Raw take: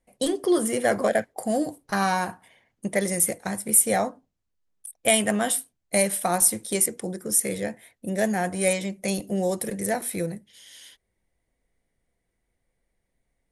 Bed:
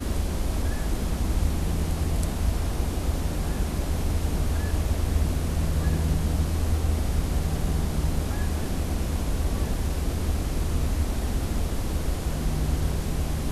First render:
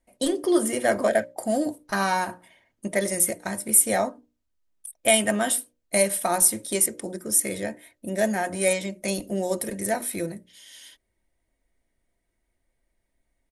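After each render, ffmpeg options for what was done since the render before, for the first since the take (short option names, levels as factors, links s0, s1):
-af "bandreject=f=60:t=h:w=6,bandreject=f=120:t=h:w=6,bandreject=f=180:t=h:w=6,bandreject=f=240:t=h:w=6,bandreject=f=300:t=h:w=6,bandreject=f=360:t=h:w=6,bandreject=f=420:t=h:w=6,bandreject=f=480:t=h:w=6,bandreject=f=540:t=h:w=6,bandreject=f=600:t=h:w=6,aecho=1:1:3.2:0.37"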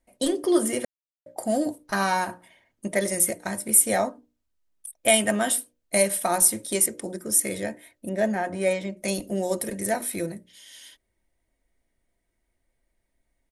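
-filter_complex "[0:a]asettb=1/sr,asplit=3[s0][s1][s2];[s0]atrim=end=8.094[s3];[s1]atrim=start=8.09:end=8.97,asetpts=PTS-STARTPTS,afade=t=in:d=0.004:c=qsin,afade=t=out:st=0.876:d=0.004:c=qsin,aemphasis=mode=reproduction:type=75kf[s4];[s2]atrim=start=8.966[s5];[s3][s4]acrossfade=d=0.004:c1=hsin:c2=qsin[s6];[s6][s5]acrossfade=d=0.004:c1=qsin:c2=hsin,asplit=3[s7][s8][s9];[s7]atrim=end=0.85,asetpts=PTS-STARTPTS,afade=t=out:st=0.846:d=0.004:c=hsin[s10];[s8]atrim=start=0.85:end=1.26,asetpts=PTS-STARTPTS,volume=0[s11];[s9]atrim=start=1.26,asetpts=PTS-STARTPTS,afade=t=in:d=0.004:c=hsin[s12];[s10][s11][s12]concat=n=3:v=0:a=1"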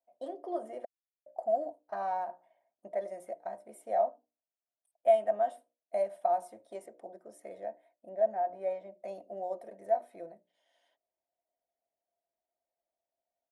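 -af "bandpass=f=690:t=q:w=6.5:csg=0"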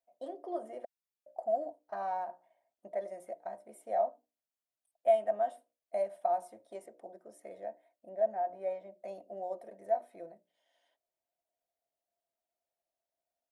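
-af "volume=0.794"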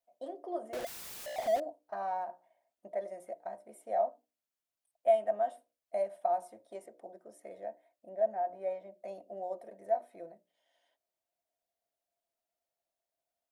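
-filter_complex "[0:a]asettb=1/sr,asplit=3[s0][s1][s2];[s0]atrim=end=0.734[s3];[s1]atrim=start=0.73:end=1.6,asetpts=PTS-STARTPTS,afade=t=in:d=0.004:c=qsin,afade=t=out:st=0.866:d=0.004:c=qsin,aeval=exprs='val(0)+0.5*0.0168*sgn(val(0))':c=same[s4];[s2]atrim=start=1.596[s5];[s3][s4]acrossfade=d=0.004:c1=hsin:c2=qsin[s6];[s6][s5]acrossfade=d=0.004:c1=qsin:c2=hsin"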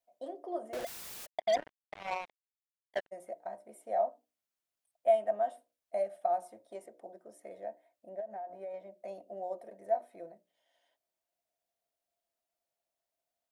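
-filter_complex "[0:a]asplit=3[s0][s1][s2];[s0]afade=t=out:st=1.25:d=0.02[s3];[s1]acrusher=bits=4:mix=0:aa=0.5,afade=t=in:st=1.25:d=0.02,afade=t=out:st=3.11:d=0.02[s4];[s2]afade=t=in:st=3.11:d=0.02[s5];[s3][s4][s5]amix=inputs=3:normalize=0,asettb=1/sr,asplit=3[s6][s7][s8];[s6]atrim=end=5.994[s9];[s7]atrim=start=5.99:end=6.45,asetpts=PTS-STARTPTS,afade=t=in:d=0.004:c=qsin,afade=t=out:st=0.456:d=0.004:c=qsin,asuperstop=centerf=980:order=4:qfactor=6.7[s10];[s8]atrim=start=6.446[s11];[s9][s10]acrossfade=d=0.004:c1=hsin:c2=qsin[s12];[s12][s11]acrossfade=d=0.004:c1=qsin:c2=hsin,asettb=1/sr,asplit=3[s13][s14][s15];[s13]atrim=end=8.204[s16];[s14]atrim=start=8.2:end=8.74,asetpts=PTS-STARTPTS,afade=t=in:d=0.004:c=qsin,afade=t=out:st=0.536:d=0.004:c=qsin,acompressor=threshold=0.0126:ratio=8:attack=3.2:release=140:knee=1:detection=peak[s17];[s15]atrim=start=8.736[s18];[s16][s17]acrossfade=d=0.004:c1=hsin:c2=qsin[s19];[s19][s18]acrossfade=d=0.004:c1=qsin:c2=hsin"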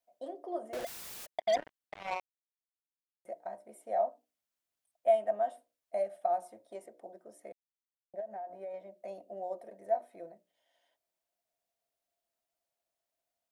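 -filter_complex "[0:a]asettb=1/sr,asplit=3[s0][s1][s2];[s0]atrim=end=7.524[s3];[s1]atrim=start=7.52:end=8.14,asetpts=PTS-STARTPTS,afade=t=in:d=0.004:c=qsin,afade=t=out:st=0.616:d=0.004:c=qsin,acrusher=bits=3:mix=0:aa=0.5[s4];[s2]atrim=start=8.136[s5];[s3][s4]acrossfade=d=0.004:c1=hsin:c2=qsin[s6];[s6][s5]acrossfade=d=0.004:c1=qsin:c2=hsin,asplit=3[s7][s8][s9];[s7]atrim=end=2.2,asetpts=PTS-STARTPTS,afade=t=out:st=2.196:d=0.004:c=hsin[s10];[s8]atrim=start=2.2:end=3.25,asetpts=PTS-STARTPTS,volume=0[s11];[s9]atrim=start=3.25,asetpts=PTS-STARTPTS,afade=t=in:d=0.004:c=hsin[s12];[s10][s11][s12]concat=n=3:v=0:a=1"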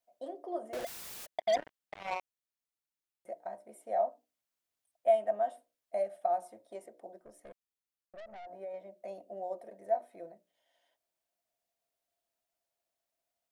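-filter_complex "[0:a]asplit=3[s0][s1][s2];[s0]afade=t=out:st=7.19:d=0.02[s3];[s1]aeval=exprs='(tanh(178*val(0)+0.4)-tanh(0.4))/178':c=same,afade=t=in:st=7.19:d=0.02,afade=t=out:st=8.45:d=0.02[s4];[s2]afade=t=in:st=8.45:d=0.02[s5];[s3][s4][s5]amix=inputs=3:normalize=0"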